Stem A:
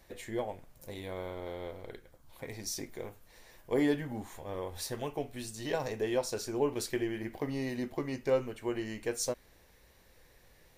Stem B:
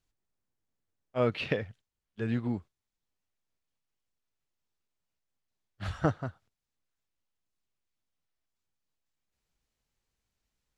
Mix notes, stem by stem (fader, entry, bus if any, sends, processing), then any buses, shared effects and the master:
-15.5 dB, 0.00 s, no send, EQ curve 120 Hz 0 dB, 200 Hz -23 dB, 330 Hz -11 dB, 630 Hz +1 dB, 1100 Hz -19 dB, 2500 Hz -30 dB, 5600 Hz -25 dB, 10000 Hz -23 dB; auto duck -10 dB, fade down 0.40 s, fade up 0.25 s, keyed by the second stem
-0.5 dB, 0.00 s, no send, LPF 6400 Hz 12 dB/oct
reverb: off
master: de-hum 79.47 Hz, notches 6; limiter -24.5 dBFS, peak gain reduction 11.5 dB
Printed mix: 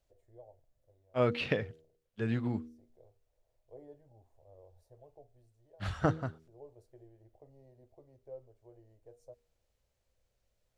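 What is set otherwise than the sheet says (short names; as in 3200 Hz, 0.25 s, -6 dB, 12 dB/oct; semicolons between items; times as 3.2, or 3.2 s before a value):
stem B: missing LPF 6400 Hz 12 dB/oct; master: missing limiter -24.5 dBFS, peak gain reduction 11.5 dB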